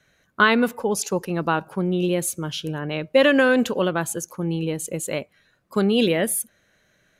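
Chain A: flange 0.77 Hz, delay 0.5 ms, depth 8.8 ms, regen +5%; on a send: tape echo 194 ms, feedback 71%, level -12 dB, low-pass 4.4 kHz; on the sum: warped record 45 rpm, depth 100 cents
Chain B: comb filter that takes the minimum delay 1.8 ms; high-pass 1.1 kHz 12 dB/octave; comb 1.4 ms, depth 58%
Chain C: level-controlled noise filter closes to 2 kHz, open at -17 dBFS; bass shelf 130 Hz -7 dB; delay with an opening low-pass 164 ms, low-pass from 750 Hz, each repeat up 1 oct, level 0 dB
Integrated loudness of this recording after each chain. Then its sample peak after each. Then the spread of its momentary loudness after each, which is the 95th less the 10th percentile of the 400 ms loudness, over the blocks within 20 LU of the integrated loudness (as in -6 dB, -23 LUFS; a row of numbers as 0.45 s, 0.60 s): -25.5 LUFS, -27.0 LUFS, -20.0 LUFS; -7.5 dBFS, -6.5 dBFS, -3.5 dBFS; 14 LU, 15 LU, 11 LU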